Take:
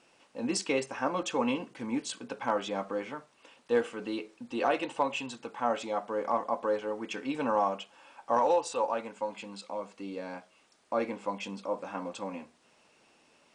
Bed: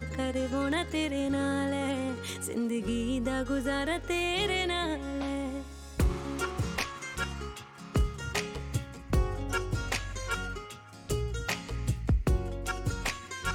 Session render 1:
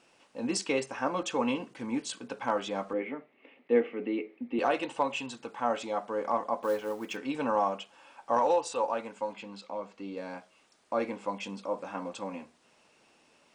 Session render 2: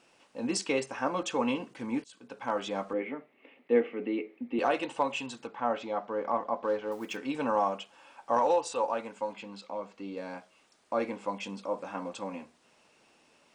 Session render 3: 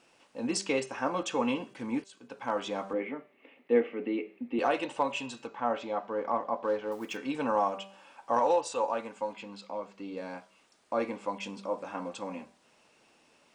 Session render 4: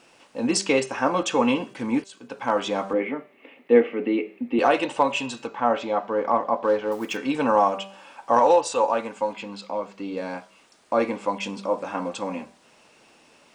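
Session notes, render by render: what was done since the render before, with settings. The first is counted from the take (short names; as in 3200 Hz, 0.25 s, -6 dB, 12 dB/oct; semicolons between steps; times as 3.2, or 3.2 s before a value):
2.93–4.59 speaker cabinet 180–2600 Hz, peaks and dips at 260 Hz +9 dB, 400 Hz +6 dB, 1000 Hz -9 dB, 1500 Hz -10 dB, 2100 Hz +9 dB; 6.63–7.17 companded quantiser 6-bit; 9.33–10.17 air absorption 80 m
2.04–2.65 fade in, from -23.5 dB; 5.47–6.92 air absorption 160 m
de-hum 195 Hz, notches 38
gain +8.5 dB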